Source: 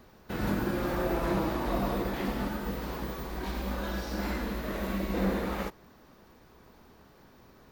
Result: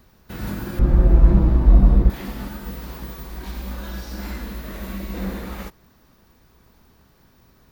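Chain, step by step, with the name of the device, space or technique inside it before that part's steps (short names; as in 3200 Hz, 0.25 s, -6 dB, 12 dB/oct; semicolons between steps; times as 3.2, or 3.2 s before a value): 0.79–2.1 tilt -4.5 dB/oct; smiley-face EQ (low shelf 180 Hz +6 dB; bell 490 Hz -4.5 dB 2.3 oct; high shelf 6000 Hz +6.5 dB)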